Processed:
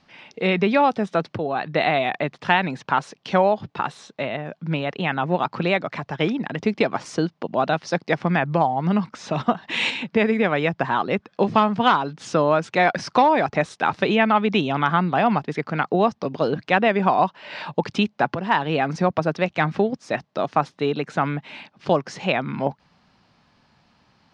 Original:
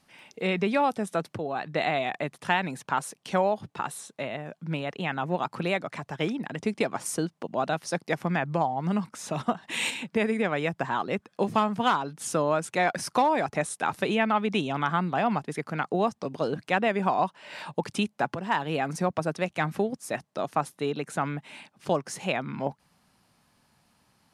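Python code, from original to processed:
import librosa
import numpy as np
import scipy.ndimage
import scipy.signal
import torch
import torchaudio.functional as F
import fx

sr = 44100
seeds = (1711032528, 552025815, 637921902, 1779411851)

y = scipy.signal.sosfilt(scipy.signal.butter(4, 5200.0, 'lowpass', fs=sr, output='sos'), x)
y = y * librosa.db_to_amplitude(6.5)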